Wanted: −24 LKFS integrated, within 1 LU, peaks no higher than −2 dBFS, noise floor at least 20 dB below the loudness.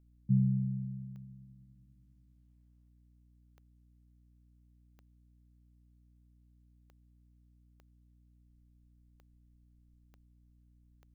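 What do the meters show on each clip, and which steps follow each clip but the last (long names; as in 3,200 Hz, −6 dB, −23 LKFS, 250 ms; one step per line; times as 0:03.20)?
number of clicks 8; mains hum 60 Hz; hum harmonics up to 300 Hz; level of the hum −62 dBFS; integrated loudness −33.5 LKFS; sample peak −18.0 dBFS; target loudness −24.0 LKFS
→ click removal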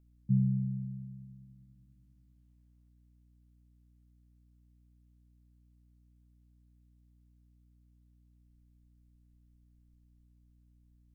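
number of clicks 0; mains hum 60 Hz; hum harmonics up to 300 Hz; level of the hum −62 dBFS
→ hum removal 60 Hz, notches 5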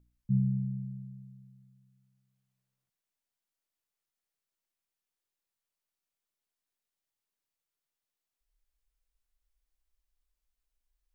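mains hum none found; integrated loudness −33.0 LKFS; sample peak −18.5 dBFS; target loudness −24.0 LKFS
→ level +9 dB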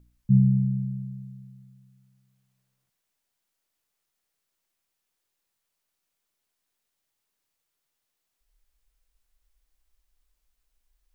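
integrated loudness −24.0 LKFS; sample peak −9.5 dBFS; background noise floor −81 dBFS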